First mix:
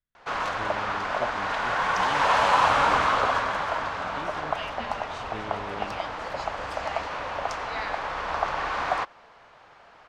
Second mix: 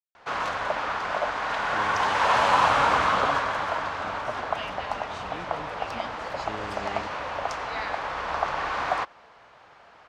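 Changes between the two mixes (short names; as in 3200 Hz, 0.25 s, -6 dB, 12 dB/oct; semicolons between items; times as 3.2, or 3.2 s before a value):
speech: entry +1.15 s; background: add HPF 41 Hz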